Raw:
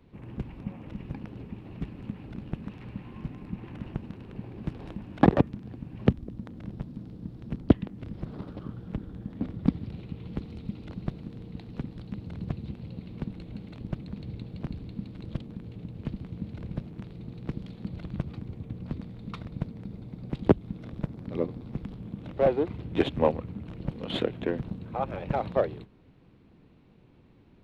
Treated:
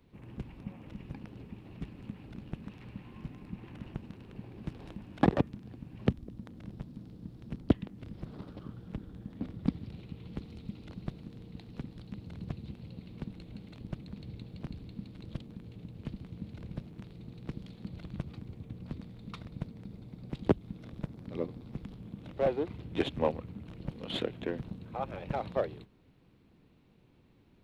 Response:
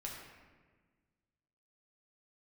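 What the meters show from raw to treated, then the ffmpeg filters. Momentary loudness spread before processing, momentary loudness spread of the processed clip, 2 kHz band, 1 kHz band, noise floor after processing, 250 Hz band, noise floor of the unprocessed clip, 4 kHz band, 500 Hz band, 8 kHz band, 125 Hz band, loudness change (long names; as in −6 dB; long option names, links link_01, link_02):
16 LU, 16 LU, −4.0 dB, −5.5 dB, −63 dBFS, −6.0 dB, −57 dBFS, −2.0 dB, −6.0 dB, can't be measured, −6.0 dB, −6.0 dB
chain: -af "highshelf=frequency=3500:gain=8,volume=-6dB"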